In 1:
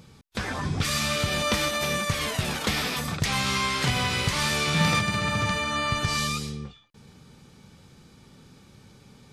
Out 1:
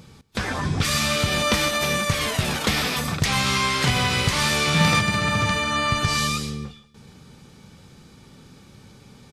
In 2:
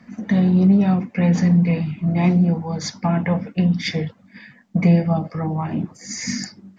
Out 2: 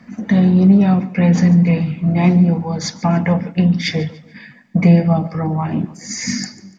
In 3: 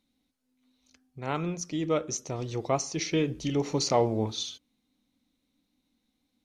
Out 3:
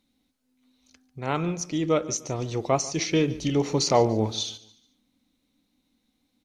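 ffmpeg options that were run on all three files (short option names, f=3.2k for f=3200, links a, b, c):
-af "aecho=1:1:145|290|435:0.112|0.0404|0.0145,volume=4dB"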